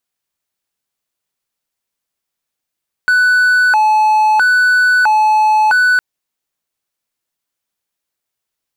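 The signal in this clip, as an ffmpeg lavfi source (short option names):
-f lavfi -i "aevalsrc='0.501*(1-4*abs(mod((1175*t+315/0.76*(0.5-abs(mod(0.76*t,1)-0.5)))+0.25,1)-0.5))':d=2.91:s=44100"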